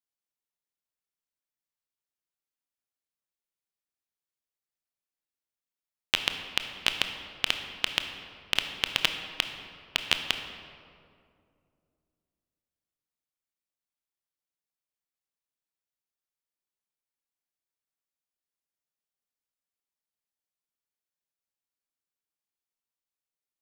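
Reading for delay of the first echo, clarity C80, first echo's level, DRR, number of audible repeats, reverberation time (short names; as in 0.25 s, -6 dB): none, 8.0 dB, none, 6.0 dB, none, 2.4 s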